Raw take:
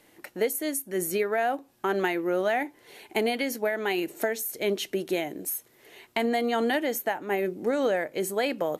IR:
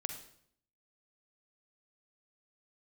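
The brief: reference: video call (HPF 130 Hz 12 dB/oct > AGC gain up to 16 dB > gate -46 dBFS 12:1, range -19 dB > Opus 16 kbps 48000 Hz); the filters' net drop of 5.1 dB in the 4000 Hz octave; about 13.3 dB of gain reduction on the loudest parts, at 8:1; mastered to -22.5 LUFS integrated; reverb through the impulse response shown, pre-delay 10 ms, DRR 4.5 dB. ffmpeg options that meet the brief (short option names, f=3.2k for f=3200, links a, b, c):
-filter_complex "[0:a]equalizer=f=4k:t=o:g=-7.5,acompressor=threshold=-36dB:ratio=8,asplit=2[a][b];[1:a]atrim=start_sample=2205,adelay=10[c];[b][c]afir=irnorm=-1:irlink=0,volume=-4.5dB[d];[a][d]amix=inputs=2:normalize=0,highpass=130,dynaudnorm=m=16dB,agate=range=-19dB:threshold=-46dB:ratio=12,volume=16.5dB" -ar 48000 -c:a libopus -b:a 16k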